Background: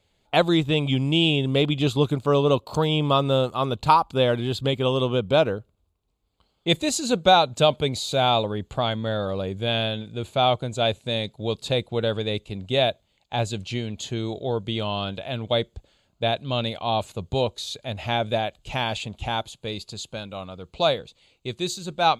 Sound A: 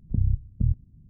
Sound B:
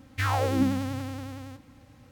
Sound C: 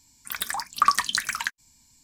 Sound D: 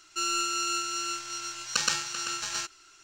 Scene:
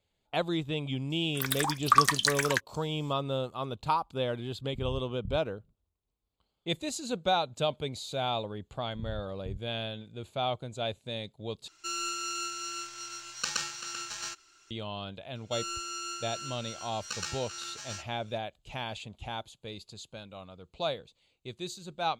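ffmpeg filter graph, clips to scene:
-filter_complex "[1:a]asplit=2[s0][s1];[4:a]asplit=2[s2][s3];[0:a]volume=0.282[s4];[s3]asplit=2[s5][s6];[s6]adelay=14,volume=0.708[s7];[s5][s7]amix=inputs=2:normalize=0[s8];[s4]asplit=2[s9][s10];[s9]atrim=end=11.684[s11];[s2]atrim=end=3.03,asetpts=PTS-STARTPTS,volume=0.531[s12];[s10]atrim=start=14.706[s13];[3:a]atrim=end=2.03,asetpts=PTS-STARTPTS,volume=0.841,afade=t=in:d=0.004:c=hsin,afade=t=out:st=2.026:d=0.004:c=hsin,adelay=1100[s14];[s0]atrim=end=1.09,asetpts=PTS-STARTPTS,volume=0.168,afade=t=in:d=0.004:c=hsin,afade=t=out:st=1.086:d=0.004:c=hsin,adelay=4640[s15];[s1]atrim=end=1.09,asetpts=PTS-STARTPTS,volume=0.141,afade=t=in:d=0.004:c=hsin,afade=t=out:st=1.086:d=0.004:c=hsin,adelay=8850[s16];[s8]atrim=end=3.03,asetpts=PTS-STARTPTS,volume=0.251,afade=t=in:d=0.004:c=hsin,afade=t=out:st=3.026:d=0.004:c=hsin,adelay=15350[s17];[s11][s12]acrossfade=d=0.004:c1=hsin:c2=hsin[s18];[s18][s13]acrossfade=d=0.004:c1=hsin:c2=hsin[s19];[s19][s14][s15][s16][s17]amix=inputs=5:normalize=0"

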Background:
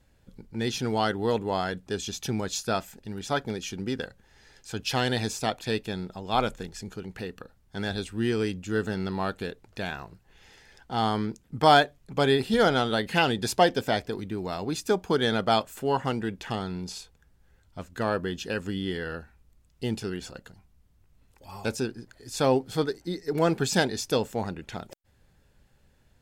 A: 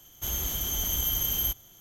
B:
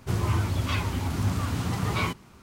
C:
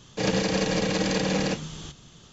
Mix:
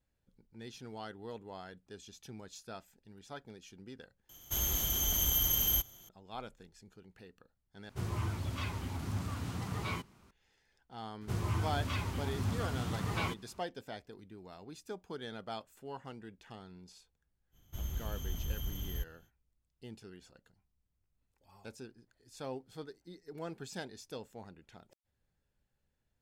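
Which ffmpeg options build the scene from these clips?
-filter_complex "[1:a]asplit=2[s0][s1];[2:a]asplit=2[s2][s3];[0:a]volume=0.112[s4];[s1]bass=f=250:g=12,treble=f=4000:g=-8[s5];[s4]asplit=3[s6][s7][s8];[s6]atrim=end=4.294[s9];[s0]atrim=end=1.8,asetpts=PTS-STARTPTS,volume=0.794[s10];[s7]atrim=start=6.086:end=7.894[s11];[s2]atrim=end=2.42,asetpts=PTS-STARTPTS,volume=0.299[s12];[s8]atrim=start=10.306[s13];[s3]atrim=end=2.42,asetpts=PTS-STARTPTS,volume=0.376,afade=t=in:d=0.004:c=hsin,afade=t=out:st=2.416:d=0.004:c=hsin,adelay=11210[s14];[s5]atrim=end=1.8,asetpts=PTS-STARTPTS,volume=0.211,afade=t=in:d=0.05,afade=t=out:st=1.75:d=0.05,adelay=17510[s15];[s9][s10]acrossfade=d=0.004:c1=hsin:c2=hsin[s16];[s16][s11]acrossfade=d=0.004:c1=hsin:c2=hsin[s17];[s17][s12]acrossfade=d=0.004:c1=hsin:c2=hsin[s18];[s18][s13]acrossfade=d=0.004:c1=hsin:c2=hsin[s19];[s19][s14][s15]amix=inputs=3:normalize=0"

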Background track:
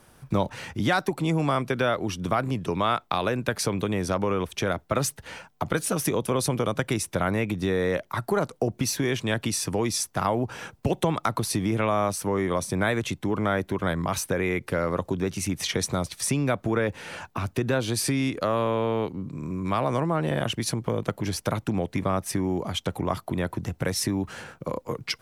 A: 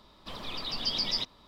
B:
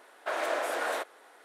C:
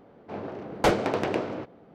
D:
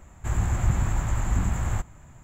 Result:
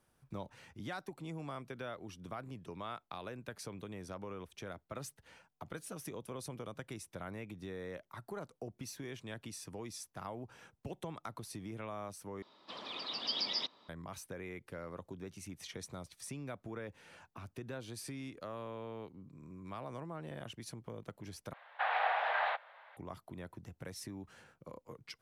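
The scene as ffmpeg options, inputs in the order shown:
-filter_complex "[0:a]volume=0.106[s0];[1:a]highpass=280,lowpass=5500[s1];[2:a]highpass=f=400:t=q:w=0.5412,highpass=f=400:t=q:w=1.307,lowpass=f=3500:t=q:w=0.5176,lowpass=f=3500:t=q:w=0.7071,lowpass=f=3500:t=q:w=1.932,afreqshift=140[s2];[s0]asplit=3[s3][s4][s5];[s3]atrim=end=12.424[s6];[s1]atrim=end=1.47,asetpts=PTS-STARTPTS,volume=0.631[s7];[s4]atrim=start=13.886:end=21.534[s8];[s2]atrim=end=1.44,asetpts=PTS-STARTPTS,volume=0.841[s9];[s5]atrim=start=22.966[s10];[s6][s7]acrossfade=d=0.004:c1=hsin:c2=hsin[s11];[s11][s8]acrossfade=d=0.004:c1=hsin:c2=hsin[s12];[s12][s9]acrossfade=d=0.004:c1=hsin:c2=hsin[s13];[s13][s10]acrossfade=d=0.004:c1=hsin:c2=hsin"

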